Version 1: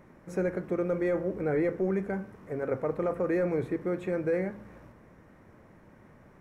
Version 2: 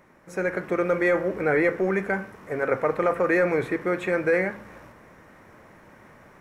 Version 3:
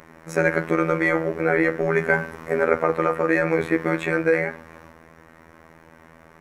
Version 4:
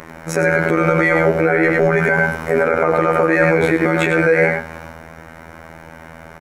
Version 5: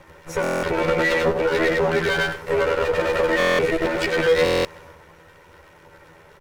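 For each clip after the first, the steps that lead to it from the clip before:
dynamic EQ 1900 Hz, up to +5 dB, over -47 dBFS, Q 0.8; AGC gain up to 6.5 dB; low shelf 490 Hz -11 dB; gain +4.5 dB
robotiser 81.3 Hz; vocal rider within 5 dB 0.5 s; gain +6 dB
on a send: echo 97 ms -6 dB; on the sum: maximiser +12 dB; gain -1 dB
minimum comb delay 2.1 ms; stuck buffer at 0.42/3.38/4.44, samples 1024, times 8; gain -2 dB

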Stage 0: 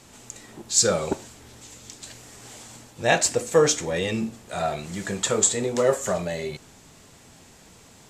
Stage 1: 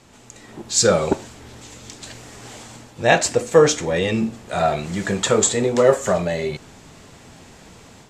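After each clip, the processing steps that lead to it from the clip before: LPF 4000 Hz 6 dB/oct; AGC gain up to 6.5 dB; gain +1 dB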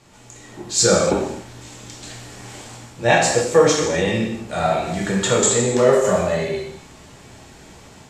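non-linear reverb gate 0.32 s falling, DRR -2.5 dB; gain -3 dB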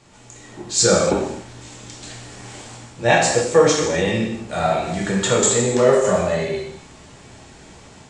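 downsampling 22050 Hz

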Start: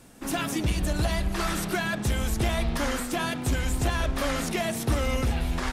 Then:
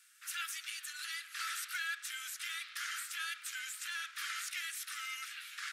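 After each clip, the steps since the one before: steep high-pass 1300 Hz 72 dB/oct; gain -6.5 dB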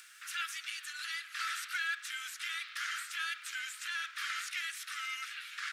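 added noise blue -77 dBFS; upward compressor, threshold -47 dBFS; high shelf 7400 Hz -12 dB; gain +4 dB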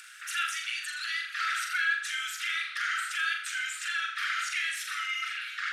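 formant sharpening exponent 1.5; flutter echo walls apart 7.1 m, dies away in 0.52 s; gain +5.5 dB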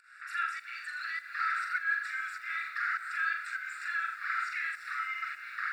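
running mean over 14 samples; pump 101 bpm, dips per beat 1, -17 dB, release 0.216 s; lo-fi delay 0.305 s, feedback 80%, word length 10-bit, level -15 dB; gain +3.5 dB

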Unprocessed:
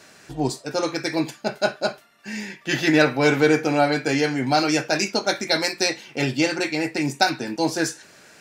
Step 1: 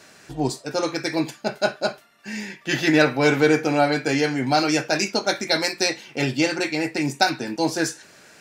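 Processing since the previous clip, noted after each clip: nothing audible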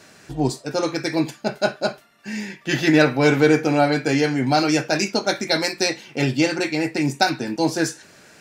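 low shelf 320 Hz +5 dB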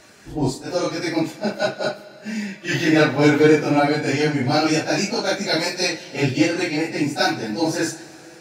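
phase scrambler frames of 0.1 s; Schroeder reverb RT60 3.1 s, combs from 30 ms, DRR 15.5 dB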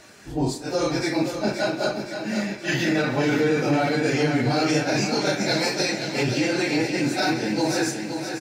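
limiter -14 dBFS, peak gain reduction 11.5 dB; on a send: feedback echo 0.523 s, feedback 59%, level -8 dB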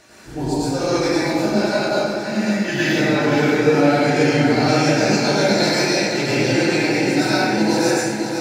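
plate-style reverb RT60 1.1 s, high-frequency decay 0.65×, pre-delay 85 ms, DRR -7 dB; gain -2 dB

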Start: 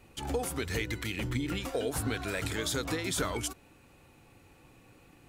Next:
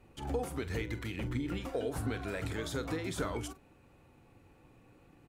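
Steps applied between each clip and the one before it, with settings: high shelf 2200 Hz -10 dB; doubler 44 ms -13.5 dB; gain -2 dB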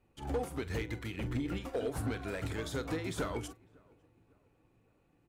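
darkening echo 0.553 s, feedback 57%, low-pass 1500 Hz, level -19.5 dB; overloaded stage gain 29.5 dB; upward expander 1.5:1, over -57 dBFS; gain +2 dB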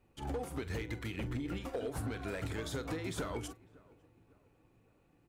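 compressor, threshold -36 dBFS, peak gain reduction 6.5 dB; gain +1.5 dB

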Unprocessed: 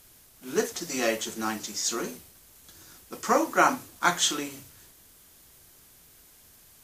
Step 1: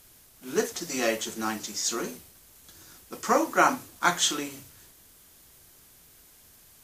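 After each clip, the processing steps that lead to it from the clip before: nothing audible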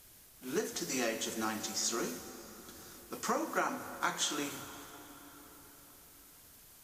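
compressor 6:1, threshold -27 dBFS, peak gain reduction 11.5 dB; crackle 36/s -52 dBFS; plate-style reverb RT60 4.8 s, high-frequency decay 0.6×, DRR 9 dB; gain -3 dB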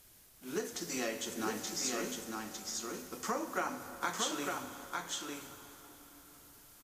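echo 0.905 s -3.5 dB; gain -2.5 dB

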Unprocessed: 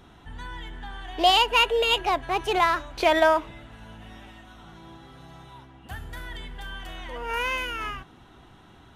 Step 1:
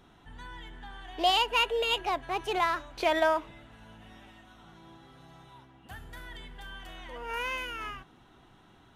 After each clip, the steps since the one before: bell 67 Hz -5.5 dB 1 oct; gain -6 dB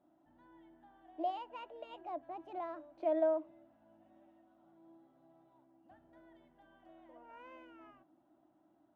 double band-pass 440 Hz, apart 0.95 oct; gain -2.5 dB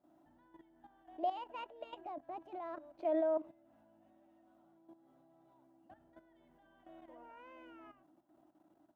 level quantiser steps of 12 dB; gain +4.5 dB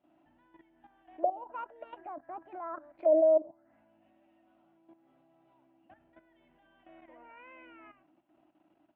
envelope low-pass 590–2800 Hz down, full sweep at -34 dBFS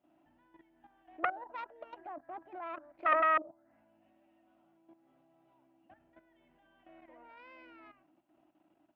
self-modulated delay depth 0.61 ms; gain -2 dB

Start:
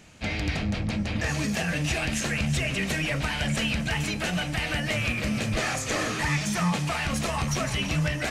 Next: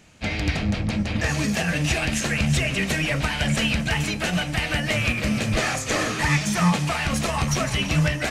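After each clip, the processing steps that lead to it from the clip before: upward expander 1.5:1, over -37 dBFS; gain +6.5 dB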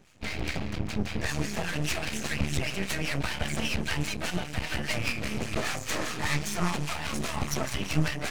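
harmonic tremolo 5 Hz, depth 70%, crossover 960 Hz; half-wave rectifier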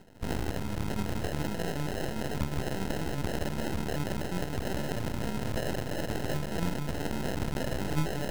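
in parallel at -1.5 dB: negative-ratio compressor -35 dBFS, ratio -0.5; on the sum: sample-and-hold 38×; gain -4 dB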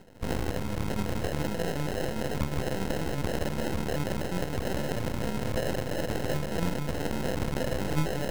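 small resonant body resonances 510/1100/2200 Hz, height 6 dB; gain +1.5 dB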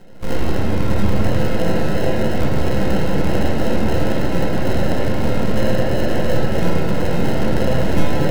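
reverb RT60 3.2 s, pre-delay 6 ms, DRR -6 dB; gain +3.5 dB

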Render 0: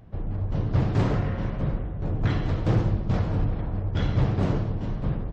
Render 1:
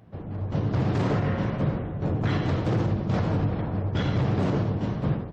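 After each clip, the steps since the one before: HPF 110 Hz 12 dB/oct; AGC gain up to 5 dB; limiter -16 dBFS, peak gain reduction 8.5 dB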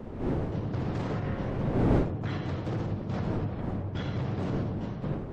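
wind noise 320 Hz -26 dBFS; gain -7.5 dB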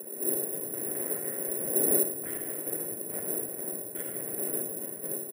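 speaker cabinet 350–2600 Hz, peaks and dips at 390 Hz +9 dB, 580 Hz +4 dB, 850 Hz -9 dB, 1200 Hz -9 dB, 1800 Hz +4 dB; feedback echo 0.112 s, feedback 56%, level -16.5 dB; careless resampling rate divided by 4×, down filtered, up zero stuff; gain -4.5 dB

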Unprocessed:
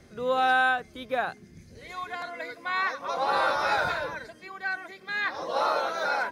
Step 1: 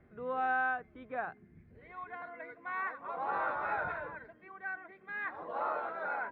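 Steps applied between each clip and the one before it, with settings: LPF 2100 Hz 24 dB/oct; notch 540 Hz, Q 12; gain -8.5 dB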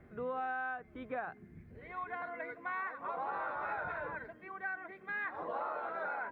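compressor 6:1, threshold -40 dBFS, peak gain reduction 11.5 dB; gain +4.5 dB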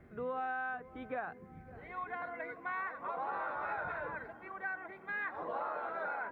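darkening echo 0.558 s, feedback 77%, low-pass 1300 Hz, level -17 dB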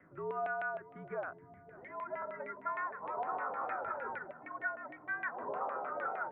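LFO low-pass saw down 6.5 Hz 700–2400 Hz; mistuned SSB -74 Hz 200–3600 Hz; gain -3.5 dB

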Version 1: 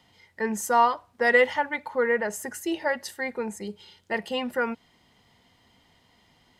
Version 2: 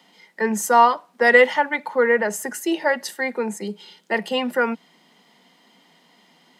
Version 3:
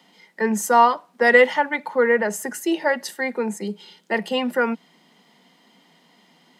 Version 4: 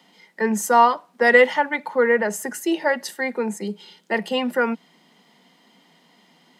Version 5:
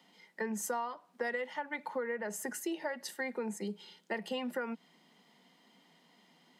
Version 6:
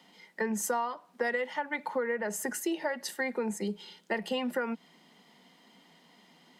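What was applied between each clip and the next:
steep high-pass 160 Hz 96 dB/oct; gain +6 dB
low shelf 250 Hz +4.5 dB; gain -1 dB
nothing audible
compressor 16:1, threshold -24 dBFS, peak gain reduction 16.5 dB; gain -8.5 dB
gain +5 dB; Opus 96 kbps 48000 Hz

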